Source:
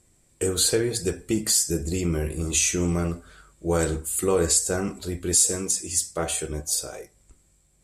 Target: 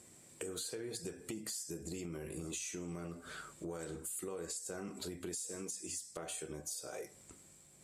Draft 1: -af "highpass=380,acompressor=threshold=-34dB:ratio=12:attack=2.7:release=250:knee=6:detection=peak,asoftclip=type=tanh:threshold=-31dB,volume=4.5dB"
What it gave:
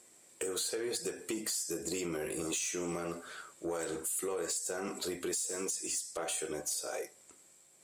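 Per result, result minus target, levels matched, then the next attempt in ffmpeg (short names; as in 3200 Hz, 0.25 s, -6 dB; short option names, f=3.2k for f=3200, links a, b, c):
125 Hz band -8.5 dB; compressor: peak gain reduction -8 dB
-af "highpass=150,acompressor=threshold=-34dB:ratio=12:attack=2.7:release=250:knee=6:detection=peak,asoftclip=type=tanh:threshold=-31dB,volume=4.5dB"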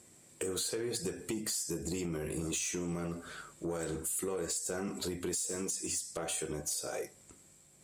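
compressor: peak gain reduction -8 dB
-af "highpass=150,acompressor=threshold=-42.5dB:ratio=12:attack=2.7:release=250:knee=6:detection=peak,asoftclip=type=tanh:threshold=-31dB,volume=4.5dB"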